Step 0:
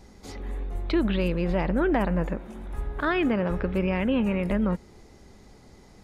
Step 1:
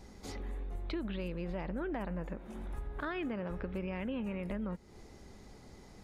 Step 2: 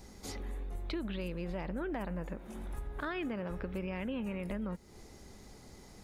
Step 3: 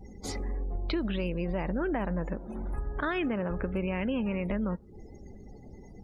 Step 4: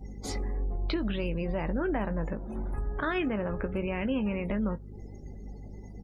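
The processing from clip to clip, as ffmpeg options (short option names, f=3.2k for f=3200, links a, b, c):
-af "acompressor=threshold=-36dB:ratio=3,volume=-2.5dB"
-af "highshelf=f=6k:g=9.5"
-af "acrusher=bits=9:mix=0:aa=0.000001,afftdn=nr=33:nf=-53,volume=7dB"
-filter_complex "[0:a]aeval=exprs='val(0)+0.00562*(sin(2*PI*50*n/s)+sin(2*PI*2*50*n/s)/2+sin(2*PI*3*50*n/s)/3+sin(2*PI*4*50*n/s)/4+sin(2*PI*5*50*n/s)/5)':c=same,asplit=2[a][b];[b]adelay=19,volume=-11dB[c];[a][c]amix=inputs=2:normalize=0"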